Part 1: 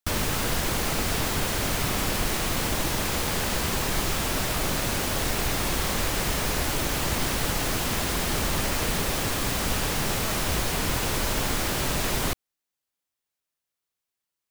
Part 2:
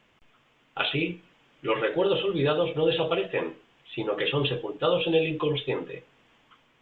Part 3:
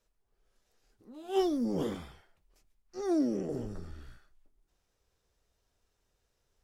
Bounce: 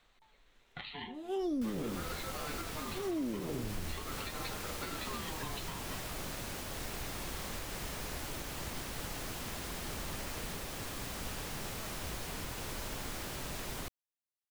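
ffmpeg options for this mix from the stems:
-filter_complex "[0:a]adelay=1550,volume=-14.5dB[a];[1:a]highshelf=f=3.5k:g=11.5,acompressor=threshold=-32dB:ratio=4,aeval=exprs='val(0)*sin(2*PI*740*n/s+740*0.25/0.44*sin(2*PI*0.44*n/s))':c=same,volume=-6.5dB[b];[2:a]lowshelf=f=430:g=8,volume=-2.5dB[c];[a][b][c]amix=inputs=3:normalize=0,alimiter=level_in=4.5dB:limit=-24dB:level=0:latency=1:release=192,volume=-4.5dB"

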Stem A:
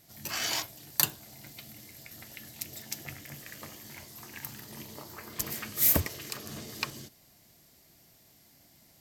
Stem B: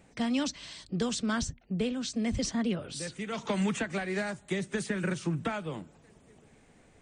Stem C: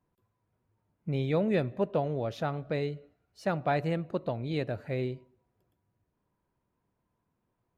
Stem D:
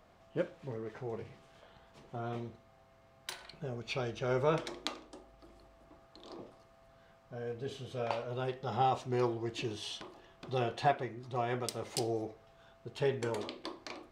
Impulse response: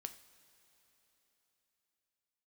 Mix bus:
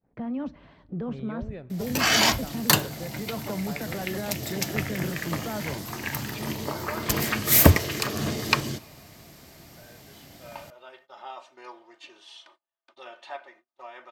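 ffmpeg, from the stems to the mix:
-filter_complex "[0:a]aeval=exprs='0.75*sin(PI/2*2.82*val(0)/0.75)':c=same,adelay=1700,volume=-0.5dB,asplit=2[a][b];[b]volume=-5.5dB[c];[1:a]lowpass=1.1k,alimiter=level_in=4.5dB:limit=-24dB:level=0:latency=1:release=20,volume=-4.5dB,volume=0.5dB,asplit=2[d][e];[e]volume=-4.5dB[f];[2:a]alimiter=limit=-20.5dB:level=0:latency=1:release=369,volume=-12dB,asplit=2[g][h];[h]volume=-8dB[i];[3:a]highpass=860,aecho=1:1:3.3:0.75,acompressor=mode=upward:threshold=-52dB:ratio=2.5,adelay=2450,volume=-6.5dB,asplit=2[j][k];[k]volume=-4dB[l];[4:a]atrim=start_sample=2205[m];[c][f][i][l]amix=inputs=4:normalize=0[n];[n][m]afir=irnorm=-1:irlink=0[o];[a][d][g][j][o]amix=inputs=5:normalize=0,agate=range=-32dB:threshold=-55dB:ratio=16:detection=peak,highshelf=f=4.8k:g=-10"

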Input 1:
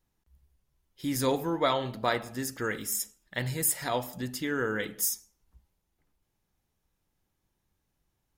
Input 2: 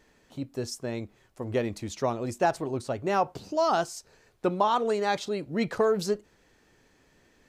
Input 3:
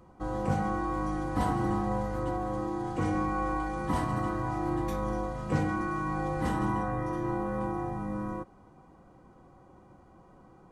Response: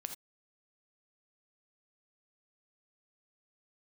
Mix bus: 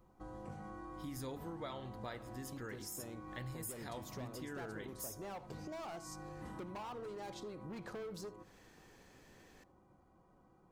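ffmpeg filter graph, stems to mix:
-filter_complex "[0:a]lowshelf=f=130:g=12,volume=-6.5dB[a];[1:a]asoftclip=type=hard:threshold=-26.5dB,adynamicequalizer=threshold=0.00562:dfrequency=1500:dqfactor=0.7:tfrequency=1500:tqfactor=0.7:attack=5:release=100:ratio=0.375:range=2:mode=cutabove:tftype=highshelf,adelay=2150,volume=-1.5dB,asplit=2[b][c];[c]volume=-13dB[d];[2:a]volume=-15.5dB,asplit=2[e][f];[f]volume=-3dB[g];[b][e]amix=inputs=2:normalize=0,highshelf=f=12k:g=8,acompressor=threshold=-40dB:ratio=6,volume=0dB[h];[3:a]atrim=start_sample=2205[i];[d][g]amix=inputs=2:normalize=0[j];[j][i]afir=irnorm=-1:irlink=0[k];[a][h][k]amix=inputs=3:normalize=0,acompressor=threshold=-48dB:ratio=2.5"

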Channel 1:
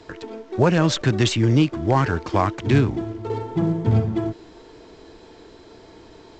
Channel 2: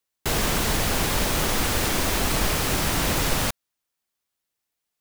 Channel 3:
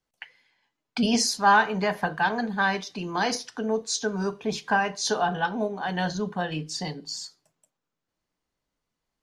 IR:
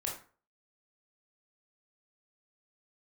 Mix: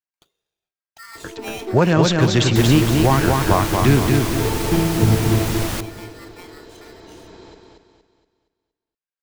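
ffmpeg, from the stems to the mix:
-filter_complex "[0:a]adelay=1150,volume=2dB,asplit=2[a][b];[b]volume=-3.5dB[c];[1:a]acrossover=split=210[d][e];[e]acompressor=threshold=-28dB:ratio=1.5[f];[d][f]amix=inputs=2:normalize=0,adelay=2300,volume=-0.5dB,asplit=2[g][h];[h]volume=-18.5dB[i];[2:a]equalizer=f=830:t=o:w=2.6:g=3.5,aeval=exprs='val(0)*sgn(sin(2*PI*1600*n/s))':c=same,volume=-19dB[j];[c][i]amix=inputs=2:normalize=0,aecho=0:1:234|468|702|936|1170|1404:1|0.4|0.16|0.064|0.0256|0.0102[k];[a][g][j][k]amix=inputs=4:normalize=0"

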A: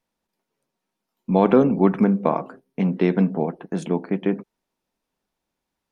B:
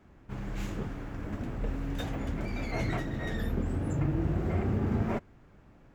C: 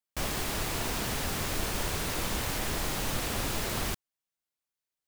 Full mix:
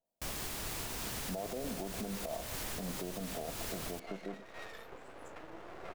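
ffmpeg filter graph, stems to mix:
-filter_complex "[0:a]lowpass=f=660:t=q:w=7,acompressor=threshold=-11dB:ratio=6,volume=-14.5dB[a];[1:a]highpass=f=470:w=0.5412,highpass=f=470:w=1.3066,highshelf=f=3.3k:g=-10,aeval=exprs='max(val(0),0)':c=same,adelay=1350,volume=-2dB[b];[2:a]adelay=50,volume=-8dB[c];[a][b][c]amix=inputs=3:normalize=0,highshelf=f=4.6k:g=5.5,alimiter=level_in=5dB:limit=-24dB:level=0:latency=1:release=231,volume=-5dB"

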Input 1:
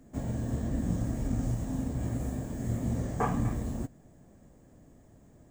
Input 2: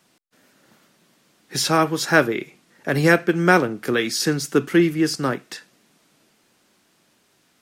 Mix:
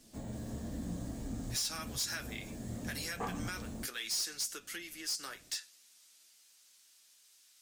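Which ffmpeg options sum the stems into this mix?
-filter_complex "[0:a]equalizer=f=100:t=o:w=0.67:g=-8,equalizer=f=4k:t=o:w=0.67:g=7,equalizer=f=10k:t=o:w=0.67:g=6,volume=-3dB[a];[1:a]aemphasis=mode=production:type=50fm,acompressor=threshold=-22dB:ratio=12,bandpass=f=5.4k:t=q:w=0.83:csg=0,volume=0.5dB,asplit=2[b][c];[c]apad=whole_len=242591[d];[a][d]sidechaincompress=threshold=-39dB:ratio=8:attack=24:release=133[e];[e][b]amix=inputs=2:normalize=0,flanger=delay=9.1:depth=1.3:regen=-37:speed=0.45:shape=triangular,asoftclip=type=tanh:threshold=-29.5dB"

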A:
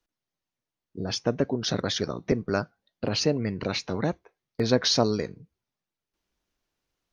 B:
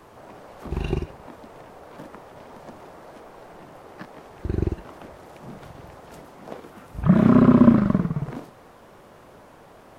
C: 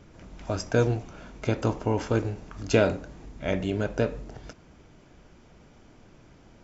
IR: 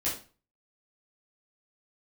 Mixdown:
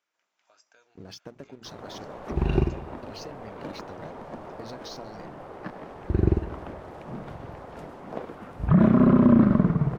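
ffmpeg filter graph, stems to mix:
-filter_complex "[0:a]bandreject=f=60:t=h:w=6,bandreject=f=120:t=h:w=6,bandreject=f=180:t=h:w=6,bandreject=f=240:t=h:w=6,bandreject=f=300:t=h:w=6,bandreject=f=360:t=h:w=6,bandreject=f=420:t=h:w=6,acompressor=threshold=-31dB:ratio=6,aeval=exprs='sgn(val(0))*max(abs(val(0))-0.00376,0)':c=same,volume=-7.5dB[a];[1:a]lowpass=f=1.9k:p=1,adelay=1650,volume=3dB,asplit=2[b][c];[c]volume=-14.5dB[d];[2:a]highpass=1.1k,acompressor=threshold=-38dB:ratio=4,volume=-20dB[e];[d]aecho=0:1:101|202|303|404|505|606|707|808:1|0.55|0.303|0.166|0.0915|0.0503|0.0277|0.0152[f];[a][b][e][f]amix=inputs=4:normalize=0,alimiter=limit=-8.5dB:level=0:latency=1:release=86"

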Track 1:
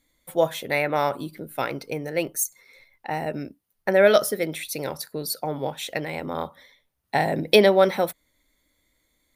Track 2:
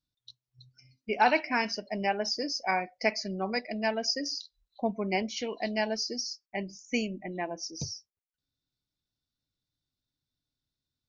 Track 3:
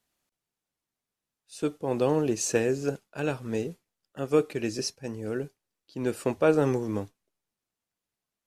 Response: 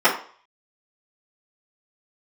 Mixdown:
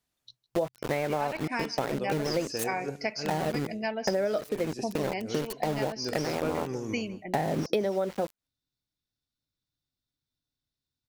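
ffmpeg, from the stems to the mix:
-filter_complex "[0:a]tiltshelf=f=1.2k:g=7,aeval=exprs='val(0)*gte(abs(val(0)),0.0473)':c=same,adelay=200,volume=1dB[a];[1:a]volume=-1.5dB,asplit=3[b][c][d];[c]volume=-23dB[e];[2:a]volume=-4dB,asplit=2[f][g];[g]volume=-15dB[h];[d]apad=whole_len=377880[i];[f][i]sidechaincompress=threshold=-33dB:ratio=8:attack=11:release=233[j];[e][h]amix=inputs=2:normalize=0,aecho=0:1:156:1[k];[a][b][j][k]amix=inputs=4:normalize=0,acompressor=threshold=-25dB:ratio=10"

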